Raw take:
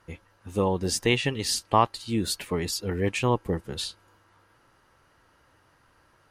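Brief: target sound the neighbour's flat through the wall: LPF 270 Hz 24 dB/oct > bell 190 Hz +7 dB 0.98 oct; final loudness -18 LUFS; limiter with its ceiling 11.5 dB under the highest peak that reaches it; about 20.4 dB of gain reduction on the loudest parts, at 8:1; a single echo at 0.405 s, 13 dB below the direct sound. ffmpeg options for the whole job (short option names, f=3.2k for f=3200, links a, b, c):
-af "acompressor=threshold=-36dB:ratio=8,alimiter=level_in=10dB:limit=-24dB:level=0:latency=1,volume=-10dB,lowpass=f=270:w=0.5412,lowpass=f=270:w=1.3066,equalizer=f=190:t=o:w=0.98:g=7,aecho=1:1:405:0.224,volume=27.5dB"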